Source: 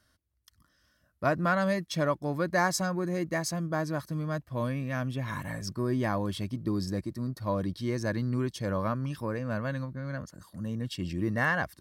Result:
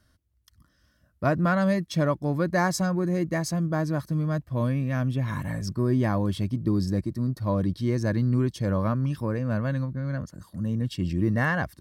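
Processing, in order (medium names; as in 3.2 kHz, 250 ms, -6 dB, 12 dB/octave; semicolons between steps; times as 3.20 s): bass shelf 350 Hz +8.5 dB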